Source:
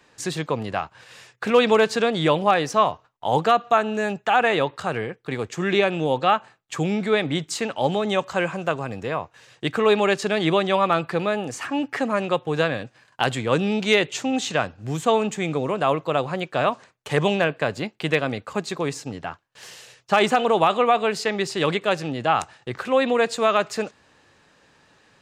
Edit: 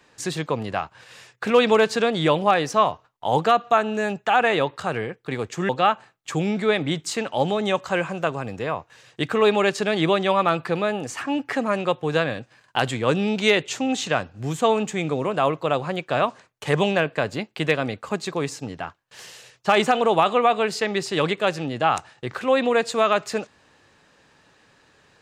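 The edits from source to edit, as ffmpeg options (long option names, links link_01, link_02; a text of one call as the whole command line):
ffmpeg -i in.wav -filter_complex "[0:a]asplit=2[link_01][link_02];[link_01]atrim=end=5.692[link_03];[link_02]atrim=start=6.128[link_04];[link_03][link_04]acrossfade=duration=0.004:curve1=hsin:curve2=hsin" out.wav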